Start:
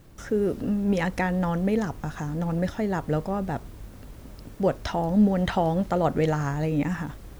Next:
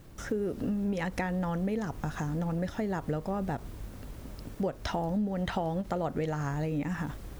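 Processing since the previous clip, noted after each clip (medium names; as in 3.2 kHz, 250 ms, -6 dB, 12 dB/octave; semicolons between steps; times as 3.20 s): compression 6:1, threshold -28 dBFS, peak gain reduction 12.5 dB; endings held to a fixed fall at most 400 dB/s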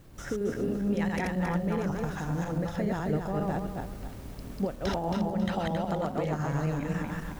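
backward echo that repeats 136 ms, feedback 56%, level -0.5 dB; trim -1.5 dB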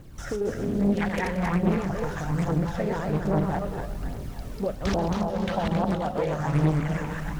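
backward echo that repeats 146 ms, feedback 70%, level -11.5 dB; phaser 1.2 Hz, delay 2.3 ms, feedback 48%; loudspeaker Doppler distortion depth 0.67 ms; trim +2 dB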